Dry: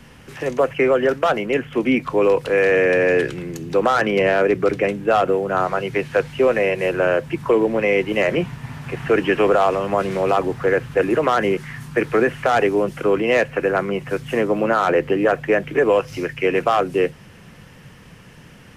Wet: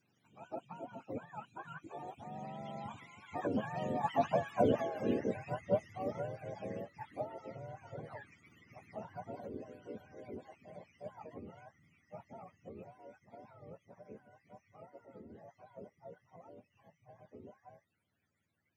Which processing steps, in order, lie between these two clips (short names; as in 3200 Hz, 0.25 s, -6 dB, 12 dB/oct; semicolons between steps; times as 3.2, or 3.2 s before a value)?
spectrum mirrored in octaves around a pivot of 570 Hz; Doppler pass-by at 4.72, 37 m/s, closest 26 m; harmonic-percussive split harmonic -14 dB; gain -6 dB